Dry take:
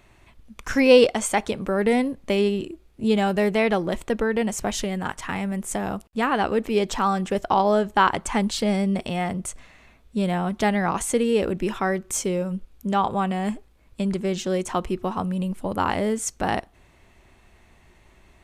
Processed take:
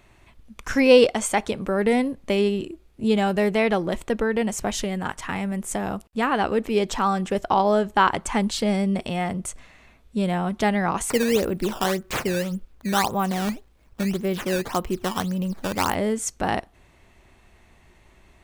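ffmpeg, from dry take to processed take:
-filter_complex "[0:a]asettb=1/sr,asplit=3[s0][s1][s2];[s0]atrim=end=11.104[s3];[s1]atrim=start=11.1:end=15.95,asetpts=PTS-STARTPTS,afade=t=in:d=0.004:c=qsin,afade=t=out:st=4.846:d=0.004:c=qsin,acrusher=samples=12:mix=1:aa=0.000001:lfo=1:lforange=19.2:lforate=1.8[s4];[s2]atrim=start=15.946[s5];[s3][s4]acrossfade=d=0.004:c1=hsin:c2=qsin[s6];[s6][s5]acrossfade=d=0.004:c1=qsin:c2=hsin"

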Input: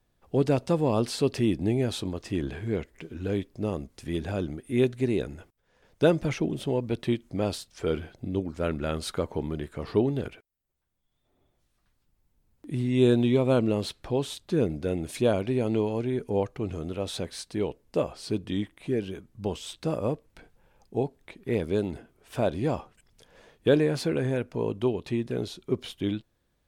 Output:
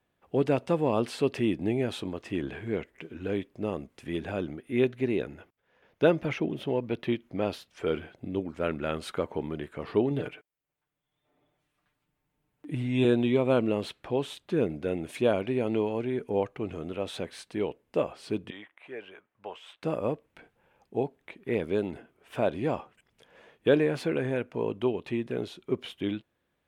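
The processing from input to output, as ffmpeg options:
-filter_complex "[0:a]asettb=1/sr,asplit=3[s0][s1][s2];[s0]atrim=end=4.504[s3];[s1]atrim=start=4.5:end=7.69,asetpts=PTS-STARTPTS,afade=t=in:d=0.004:c=qsin,afade=t=out:st=3.186:d=0.004:c=qsin,equalizer=f=8200:w=3.1:g=-10.5[s4];[s2]atrim=start=7.686[s5];[s3][s4]acrossfade=d=0.004:c1=hsin:c2=qsin[s6];[s6][s5]acrossfade=d=0.004:c1=qsin:c2=hsin,asettb=1/sr,asplit=3[s7][s8][s9];[s7]atrim=end=10.104[s10];[s8]atrim=start=10.1:end=13.05,asetpts=PTS-STARTPTS,afade=t=in:d=0.004:c=qsin,afade=t=out:st=2.946:d=0.004:c=qsin,aecho=1:1:6.7:0.65,atrim=end_sample=130095[s11];[s9]atrim=start=13.046[s12];[s10][s11]acrossfade=d=0.004:c1=hsin:c2=qsin[s13];[s13][s12]acrossfade=d=0.004:c1=qsin:c2=hsin,asettb=1/sr,asplit=3[s14][s15][s16];[s14]atrim=end=18.504[s17];[s15]atrim=start=18.5:end=19.83,asetpts=PTS-STARTPTS,afade=t=in:d=0.004:c=qsin,afade=t=out:st=1.326:d=0.004:c=qsin,acrossover=split=570 2700:gain=0.0794 1 0.224[s18][s19][s20];[s18][s19][s20]amix=inputs=3:normalize=0[s21];[s16]atrim=start=19.826[s22];[s17][s21]acrossfade=d=0.004:c1=hsin:c2=qsin[s23];[s23][s22]acrossfade=d=0.004:c1=qsin:c2=hsin,highpass=f=210:p=1,highshelf=f=3600:t=q:w=1.5:g=-7"

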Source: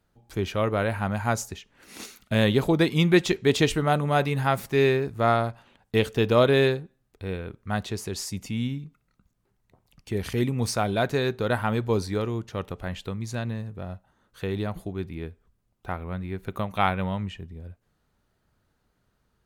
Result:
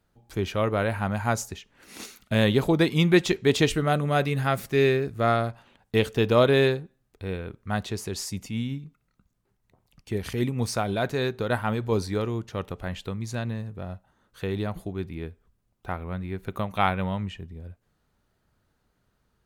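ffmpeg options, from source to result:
-filter_complex "[0:a]asettb=1/sr,asplit=3[s0][s1][s2];[s0]atrim=end=3.694[s3];[s1]atrim=start=3.69:end=5.5,asetpts=PTS-STARTPTS,afade=t=in:d=0.004:c=qsin,afade=t=out:st=1.806:d=0.004:c=qsin,equalizer=f=910:t=o:w=0.32:g=-8.5[s4];[s2]atrim=start=5.496[s5];[s3][s4]acrossfade=d=0.004:c1=hsin:c2=qsin[s6];[s6][s5]acrossfade=d=0.004:c1=qsin:c2=hsin,asettb=1/sr,asplit=3[s7][s8][s9];[s7]atrim=end=8.424[s10];[s8]atrim=start=8.42:end=11.92,asetpts=PTS-STARTPTS,afade=t=in:d=0.004:c=qsin,afade=t=out:st=3.496:d=0.004:c=qsin,tremolo=f=6.4:d=0.3[s11];[s9]atrim=start=11.916[s12];[s10][s11]acrossfade=d=0.004:c1=hsin:c2=qsin[s13];[s13][s12]acrossfade=d=0.004:c1=qsin:c2=hsin"

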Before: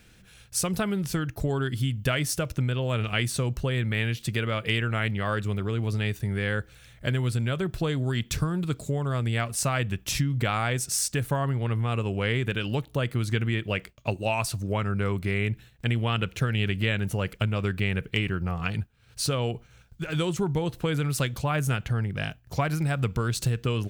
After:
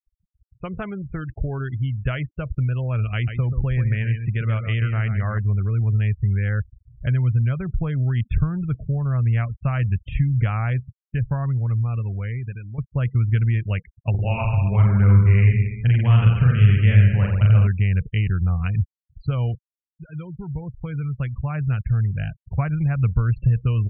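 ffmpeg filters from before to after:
-filter_complex "[0:a]asettb=1/sr,asplit=3[s0][s1][s2];[s0]atrim=end=3.144[s3];[s1]atrim=start=3.14:end=5.38,asetpts=PTS-STARTPTS,afade=t=in:d=0.004:c=qsin,afade=t=out:st=2.236:d=0.004:c=qsin,aecho=1:1:133|266|399:0.398|0.0796|0.0159,atrim=end_sample=98784[s4];[s2]atrim=start=5.376[s5];[s3][s4]acrossfade=d=0.004:c1=hsin:c2=qsin[s6];[s6][s5]acrossfade=d=0.004:c1=qsin:c2=hsin,asettb=1/sr,asplit=3[s7][s8][s9];[s7]atrim=end=14.104[s10];[s8]atrim=start=14.1:end=17.67,asetpts=PTS-STARTPTS,afade=t=in:d=0.004:c=qsin,afade=t=out:st=3.566:d=0.004:c=qsin,aecho=1:1:40|86|138.9|199.7|269.7|350.1:0.794|0.631|0.501|0.398|0.316|0.251,atrim=end_sample=157437[s11];[s9]atrim=start=17.666[s12];[s10][s11]acrossfade=d=0.004:c1=hsin:c2=qsin[s13];[s13][s12]acrossfade=d=0.004:c1=qsin:c2=hsin,asplit=3[s14][s15][s16];[s14]atrim=end=12.78,asetpts=PTS-STARTPTS,afade=t=out:st=10.38:d=2.4:c=qsin:silence=0.223872[s17];[s15]atrim=start=12.78:end=19.55,asetpts=PTS-STARTPTS,afade=t=in:d=0.004:c=hsin:silence=0.223872,afade=t=out:st=6.766:d=0.004:c=hsin:silence=0.199526[s18];[s16]atrim=start=19.55,asetpts=PTS-STARTPTS,afade=t=in:d=3.09:silence=0.199526[s19];[s17][s18][s19]concat=n=3:v=0:a=1,lowpass=f=2700:w=0.5412,lowpass=f=2700:w=1.3066,afftfilt=real='re*gte(hypot(re,im),0.02)':imag='im*gte(hypot(re,im),0.02)':win_size=1024:overlap=0.75,asubboost=boost=8:cutoff=110,volume=0.794"

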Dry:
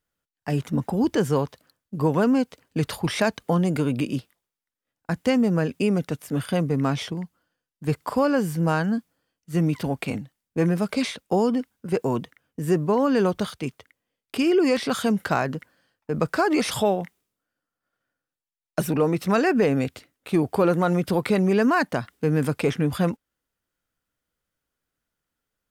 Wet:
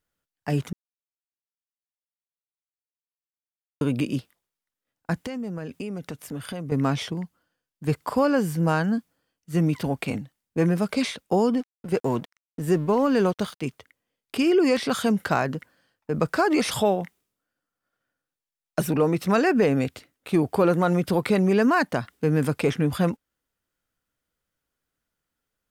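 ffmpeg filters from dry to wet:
-filter_complex "[0:a]asettb=1/sr,asplit=3[s0][s1][s2];[s0]atrim=end=5.264[s3];[s1]atrim=start=5.26:end=6.72,asetpts=PTS-STARTPTS,afade=t=in:d=0.004:c=qsin,afade=t=out:st=1.456:d=0.004:c=qsin,acompressor=threshold=0.0316:ratio=5:attack=3.2:release=140:knee=1:detection=peak[s4];[s2]atrim=start=6.716[s5];[s3][s4]acrossfade=d=0.004:c1=hsin:c2=qsin[s6];[s6][s5]acrossfade=d=0.004:c1=qsin:c2=hsin,asettb=1/sr,asplit=3[s7][s8][s9];[s7]atrim=end=11.574[s10];[s8]atrim=start=11.57:end=13.62,asetpts=PTS-STARTPTS,afade=t=in:d=0.004:c=qsin,afade=t=out:st=2.046:d=0.004:c=qsin,aeval=exprs='sgn(val(0))*max(abs(val(0))-0.00562,0)':c=same[s11];[s9]atrim=start=13.616[s12];[s10][s11]acrossfade=d=0.004:c1=hsin:c2=qsin[s13];[s13][s12]acrossfade=d=0.004:c1=qsin:c2=hsin,asplit=3[s14][s15][s16];[s14]atrim=end=0.73,asetpts=PTS-STARTPTS,afade=t=out:st=0.726:d=0.004:c=hsin[s17];[s15]atrim=start=0.73:end=3.81,asetpts=PTS-STARTPTS,volume=0[s18];[s16]atrim=start=3.81,asetpts=PTS-STARTPTS,afade=t=in:d=0.004:c=hsin[s19];[s17][s18][s19]concat=n=3:v=0:a=1"

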